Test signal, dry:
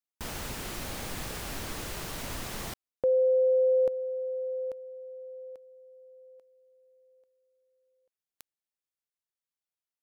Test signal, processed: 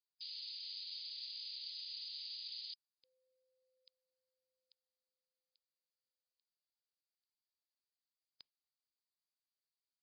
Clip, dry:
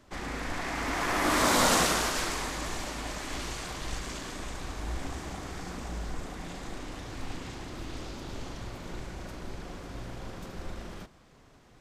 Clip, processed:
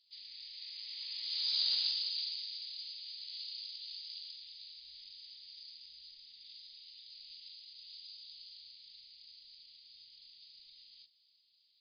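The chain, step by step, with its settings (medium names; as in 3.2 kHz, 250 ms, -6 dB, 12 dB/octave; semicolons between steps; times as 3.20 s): inverse Chebyshev high-pass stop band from 1.6 kHz, stop band 60 dB; in parallel at -9 dB: saturation -26 dBFS; on the sum: trim +9.5 dB; MP3 32 kbps 11.025 kHz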